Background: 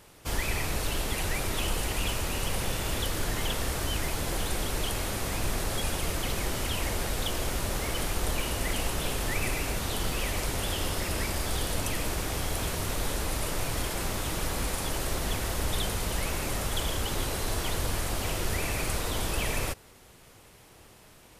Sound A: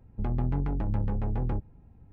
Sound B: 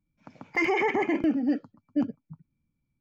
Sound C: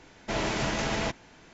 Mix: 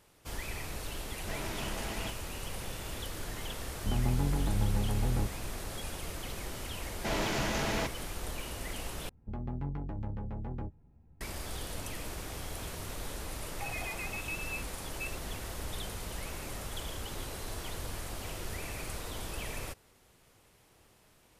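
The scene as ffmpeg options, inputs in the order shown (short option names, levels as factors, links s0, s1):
-filter_complex "[3:a]asplit=2[s0][s1];[1:a]asplit=2[s2][s3];[0:a]volume=0.335[s4];[s1]asoftclip=type=tanh:threshold=0.0794[s5];[s3]asplit=2[s6][s7];[s7]adelay=13,volume=0.398[s8];[s6][s8]amix=inputs=2:normalize=0[s9];[2:a]lowpass=f=2500:t=q:w=0.5098,lowpass=f=2500:t=q:w=0.6013,lowpass=f=2500:t=q:w=0.9,lowpass=f=2500:t=q:w=2.563,afreqshift=-2900[s10];[s4]asplit=2[s11][s12];[s11]atrim=end=9.094[s13];[s9]atrim=end=2.12,asetpts=PTS-STARTPTS,volume=0.398[s14];[s12]atrim=start=11.206[s15];[s0]atrim=end=1.53,asetpts=PTS-STARTPTS,volume=0.266,afade=t=in:d=0.004:c=hsin,afade=t=out:st=1.526:d=0.004:c=hsin,adelay=990[s16];[s2]atrim=end=2.12,asetpts=PTS-STARTPTS,volume=0.841,afade=t=in:d=0.004:c=hsin,afade=t=out:st=2.116:d=0.004:c=hsin,adelay=3670[s17];[s5]atrim=end=1.53,asetpts=PTS-STARTPTS,volume=0.794,afade=t=in:d=0.004:c=hsin,afade=t=out:st=1.526:d=0.004:c=hsin,adelay=6760[s18];[s10]atrim=end=3,asetpts=PTS-STARTPTS,volume=0.158,afade=t=in:d=0.004:c=hsin,afade=t=out:st=2.996:d=0.004:c=hsin,adelay=13040[s19];[s13][s14]acrossfade=d=0.004:c1=hsin:c2=hsin[s20];[s20][s15]acrossfade=d=0.004:c1=hsin:c2=hsin[s21];[s21][s16][s17][s18][s19]amix=inputs=5:normalize=0"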